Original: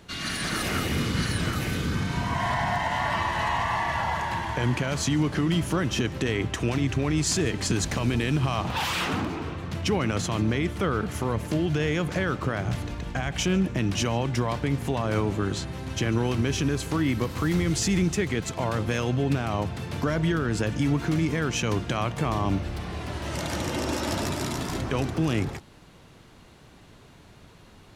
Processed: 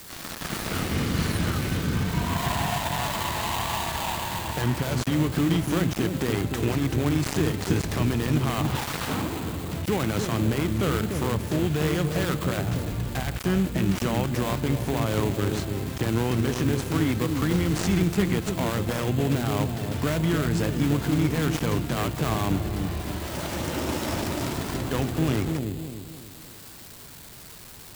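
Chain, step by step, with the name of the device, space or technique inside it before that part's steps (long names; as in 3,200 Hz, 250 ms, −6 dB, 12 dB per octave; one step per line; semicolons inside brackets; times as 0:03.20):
delay with a low-pass on its return 295 ms, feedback 40%, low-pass 530 Hz, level −4 dB
budget class-D amplifier (gap after every zero crossing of 0.24 ms; spike at every zero crossing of −25.5 dBFS)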